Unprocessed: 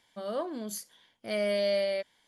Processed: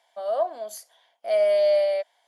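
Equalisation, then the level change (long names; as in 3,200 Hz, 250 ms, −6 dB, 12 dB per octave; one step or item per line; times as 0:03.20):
high-pass with resonance 680 Hz, resonance Q 7.3
−1.5 dB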